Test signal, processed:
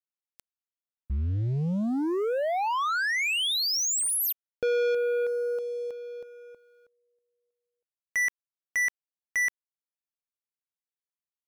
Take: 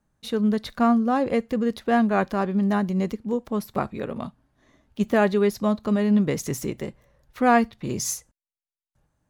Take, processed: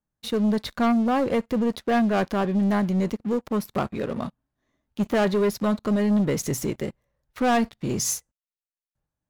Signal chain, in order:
leveller curve on the samples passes 3
level −8.5 dB

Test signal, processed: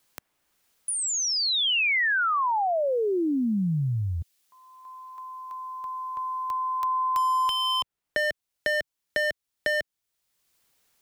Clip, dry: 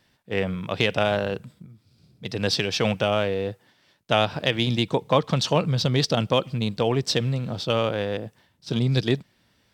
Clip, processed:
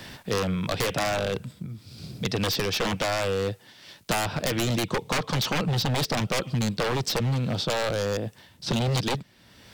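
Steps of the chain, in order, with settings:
wave folding −21 dBFS
multiband upward and downward compressor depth 70%
level +1.5 dB

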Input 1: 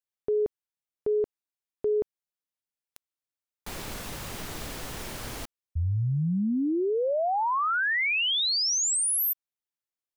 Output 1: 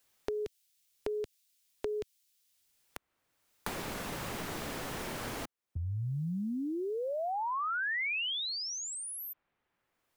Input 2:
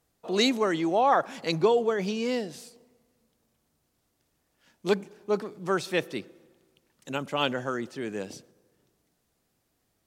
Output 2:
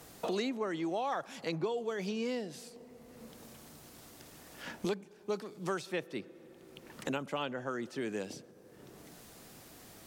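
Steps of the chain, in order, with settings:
multiband upward and downward compressor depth 100%
level −9 dB

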